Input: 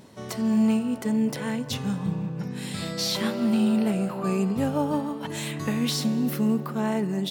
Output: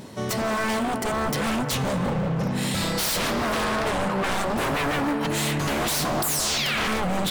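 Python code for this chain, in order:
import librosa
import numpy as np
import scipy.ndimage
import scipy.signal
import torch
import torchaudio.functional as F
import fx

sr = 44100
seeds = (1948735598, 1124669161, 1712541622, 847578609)

y = fx.lowpass(x, sr, hz=8300.0, slope=12, at=(3.64, 4.32))
y = fx.spec_paint(y, sr, seeds[0], shape='fall', start_s=6.22, length_s=0.66, low_hz=470.0, high_hz=4700.0, level_db=-24.0)
y = 10.0 ** (-29.0 / 20.0) * (np.abs((y / 10.0 ** (-29.0 / 20.0) + 3.0) % 4.0 - 2.0) - 1.0)
y = fx.echo_wet_bandpass(y, sr, ms=194, feedback_pct=85, hz=1100.0, wet_db=-13.0)
y = F.gain(torch.from_numpy(y), 9.0).numpy()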